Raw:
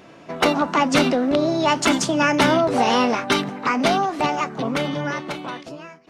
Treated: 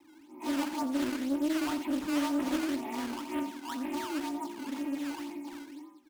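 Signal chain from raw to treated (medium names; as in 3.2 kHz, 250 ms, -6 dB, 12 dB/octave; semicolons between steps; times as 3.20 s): frequency axis rescaled in octaves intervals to 84%; comb 3.2 ms, depth 68%; transient shaper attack -8 dB, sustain +4 dB; vowel filter u; in parallel at -3 dB: saturation -27 dBFS, distortion -10 dB; on the sum: decimation with a swept rate 14×, swing 160% 2 Hz; delay 87 ms -11 dB; on a send at -16 dB: reverberation RT60 0.35 s, pre-delay 3 ms; on the sum: loudspeaker Doppler distortion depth 0.38 ms; trim -8.5 dB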